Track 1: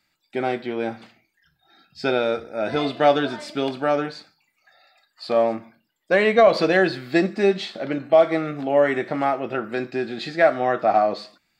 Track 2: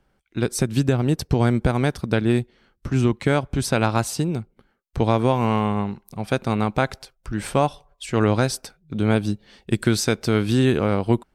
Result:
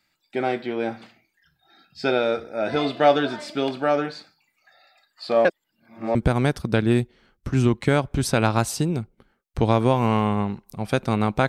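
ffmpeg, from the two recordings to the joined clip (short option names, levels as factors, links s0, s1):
-filter_complex "[0:a]apad=whole_dur=11.48,atrim=end=11.48,asplit=2[s0][s1];[s0]atrim=end=5.452[s2];[s1]atrim=start=5.448:end=6.152,asetpts=PTS-STARTPTS,areverse[s3];[1:a]atrim=start=1.538:end=6.87[s4];[s2][s3]acrossfade=d=0.004:c1=hsin:c2=hsin[s5];[s5][s4]acrossfade=d=0.004:c1=hsin:c2=hsin"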